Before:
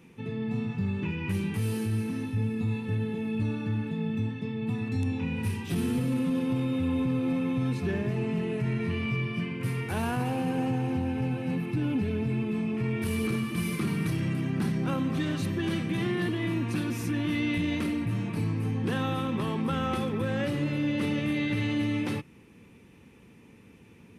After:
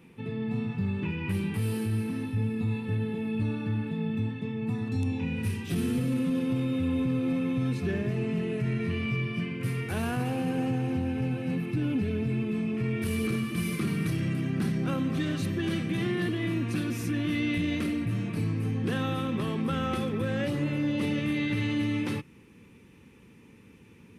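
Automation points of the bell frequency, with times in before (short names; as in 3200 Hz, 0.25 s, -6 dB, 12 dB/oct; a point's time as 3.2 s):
bell -7.5 dB 0.36 oct
4.34 s 6300 Hz
5.39 s 910 Hz
20.42 s 910 Hz
20.67 s 5700 Hz
21.23 s 680 Hz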